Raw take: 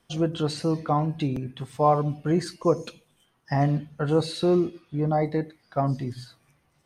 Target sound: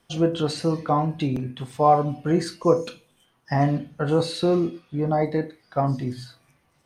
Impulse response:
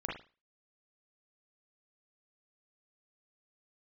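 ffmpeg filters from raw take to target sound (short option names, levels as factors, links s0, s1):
-filter_complex "[0:a]asplit=2[s0][s1];[s1]highpass=f=160:p=1[s2];[1:a]atrim=start_sample=2205,asetrate=66150,aresample=44100[s3];[s2][s3]afir=irnorm=-1:irlink=0,volume=0.596[s4];[s0][s4]amix=inputs=2:normalize=0"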